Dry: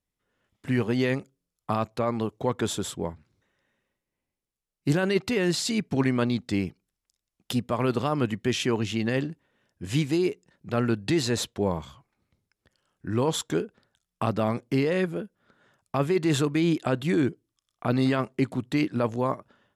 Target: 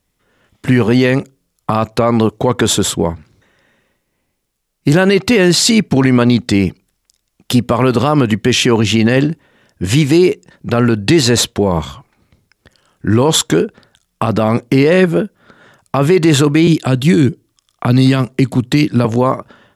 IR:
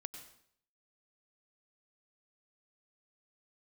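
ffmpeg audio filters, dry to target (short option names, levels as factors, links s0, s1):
-filter_complex "[0:a]asettb=1/sr,asplit=3[s0][s1][s2];[s0]atrim=end=16.674[s3];[s1]atrim=start=16.67:end=19.05,asetpts=PTS-STARTPTS,afade=t=in:d=0.004:c=qsin,afade=t=out:st=2.376:d=0.004:c=qsin,acrossover=split=240|3000[s4][s5][s6];[s5]acompressor=threshold=0.0178:ratio=6[s7];[s4][s7][s6]amix=inputs=3:normalize=0[s8];[s2]atrim=start=19.046[s9];[s3][s8]acrossfade=d=0.004:c1=hsin:c2=qsin[s10];[s10][s9]acrossfade=d=0.004:c1=qsin:c2=hsin,alimiter=level_in=8.91:limit=0.891:release=50:level=0:latency=1,volume=0.891"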